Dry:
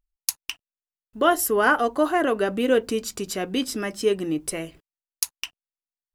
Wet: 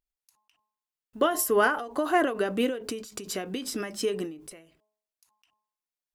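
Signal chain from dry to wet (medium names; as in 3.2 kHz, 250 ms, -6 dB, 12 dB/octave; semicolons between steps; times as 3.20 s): bass shelf 97 Hz -9.5 dB; de-hum 212.5 Hz, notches 5; endings held to a fixed fall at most 100 dB/s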